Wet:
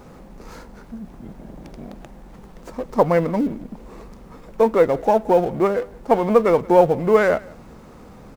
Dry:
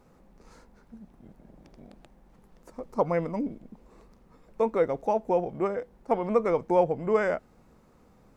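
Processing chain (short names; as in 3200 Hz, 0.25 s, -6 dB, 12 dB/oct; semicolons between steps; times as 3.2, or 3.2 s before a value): G.711 law mismatch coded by mu; echo 0.175 s -23.5 dB; running maximum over 3 samples; gain +8.5 dB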